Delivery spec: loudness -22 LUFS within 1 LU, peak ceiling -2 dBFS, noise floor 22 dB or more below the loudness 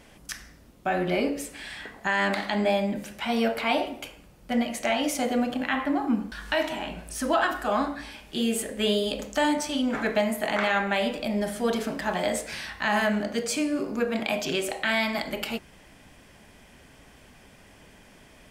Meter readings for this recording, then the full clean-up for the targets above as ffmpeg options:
loudness -27.0 LUFS; peak level -11.0 dBFS; loudness target -22.0 LUFS
-> -af "volume=1.78"

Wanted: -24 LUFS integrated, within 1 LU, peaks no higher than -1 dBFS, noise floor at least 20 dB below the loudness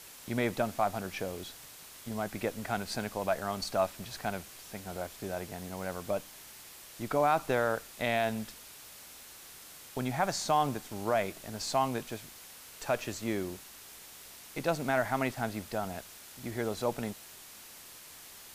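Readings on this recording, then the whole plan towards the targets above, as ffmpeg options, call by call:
noise floor -51 dBFS; noise floor target -54 dBFS; loudness -33.5 LUFS; peak level -15.5 dBFS; loudness target -24.0 LUFS
-> -af "afftdn=nr=6:nf=-51"
-af "volume=2.99"

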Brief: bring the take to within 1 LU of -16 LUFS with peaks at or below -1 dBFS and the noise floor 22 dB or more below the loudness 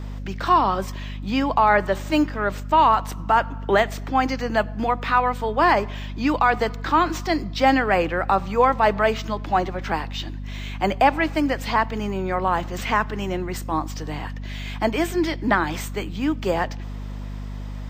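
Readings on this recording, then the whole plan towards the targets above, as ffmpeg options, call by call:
hum 50 Hz; highest harmonic 250 Hz; hum level -29 dBFS; loudness -22.0 LUFS; peak level -6.0 dBFS; loudness target -16.0 LUFS
-> -af "bandreject=f=50:t=h:w=6,bandreject=f=100:t=h:w=6,bandreject=f=150:t=h:w=6,bandreject=f=200:t=h:w=6,bandreject=f=250:t=h:w=6"
-af "volume=2,alimiter=limit=0.891:level=0:latency=1"

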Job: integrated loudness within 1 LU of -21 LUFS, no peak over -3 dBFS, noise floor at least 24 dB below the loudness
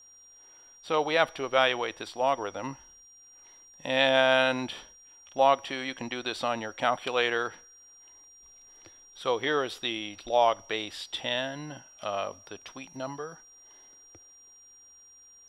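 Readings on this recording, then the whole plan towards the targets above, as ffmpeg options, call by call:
steady tone 5.7 kHz; tone level -52 dBFS; loudness -28.5 LUFS; peak level -7.5 dBFS; loudness target -21.0 LUFS
-> -af "bandreject=f=5700:w=30"
-af "volume=2.37,alimiter=limit=0.708:level=0:latency=1"

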